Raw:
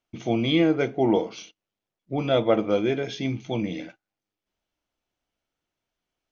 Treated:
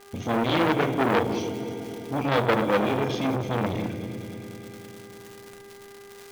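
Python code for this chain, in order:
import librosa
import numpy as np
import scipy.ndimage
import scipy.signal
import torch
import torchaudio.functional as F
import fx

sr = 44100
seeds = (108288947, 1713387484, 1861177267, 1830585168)

p1 = fx.peak_eq(x, sr, hz=87.0, db=14.0, octaves=1.0)
p2 = fx.mod_noise(p1, sr, seeds[0], snr_db=30)
p3 = fx.dmg_crackle(p2, sr, seeds[1], per_s=210.0, level_db=-35.0)
p4 = fx.dmg_buzz(p3, sr, base_hz=400.0, harmonics=5, level_db=-53.0, tilt_db=-6, odd_only=False)
p5 = p4 + fx.echo_heads(p4, sr, ms=101, heads='second and third', feedback_pct=67, wet_db=-15.5, dry=0)
p6 = fx.room_shoebox(p5, sr, seeds[2], volume_m3=3400.0, walls='furnished', distance_m=1.8)
p7 = fx.transformer_sat(p6, sr, knee_hz=1800.0)
y = p7 * 10.0 ** (1.5 / 20.0)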